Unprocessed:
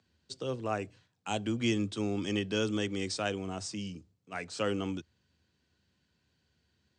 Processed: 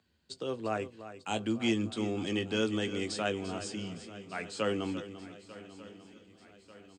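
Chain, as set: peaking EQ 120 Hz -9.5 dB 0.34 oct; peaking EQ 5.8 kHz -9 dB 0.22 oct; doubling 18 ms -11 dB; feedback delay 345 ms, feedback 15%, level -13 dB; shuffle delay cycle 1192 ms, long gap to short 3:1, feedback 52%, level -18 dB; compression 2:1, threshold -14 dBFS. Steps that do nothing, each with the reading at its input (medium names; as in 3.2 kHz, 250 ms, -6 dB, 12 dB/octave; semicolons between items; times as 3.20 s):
compression, threshold -14 dBFS: peak at its input -18.0 dBFS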